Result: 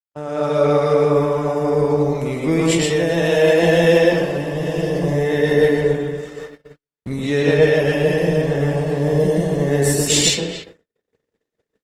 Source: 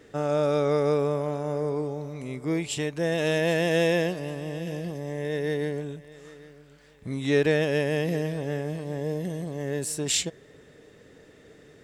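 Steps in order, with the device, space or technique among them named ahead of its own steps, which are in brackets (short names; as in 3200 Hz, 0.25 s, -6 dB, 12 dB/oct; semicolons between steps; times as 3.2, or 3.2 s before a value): speakerphone in a meeting room (reverb RT60 0.55 s, pre-delay 0.108 s, DRR -3.5 dB; speakerphone echo 0.28 s, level -11 dB; AGC gain up to 11 dB; gate -30 dBFS, range -56 dB; gain -1.5 dB; Opus 20 kbps 48000 Hz)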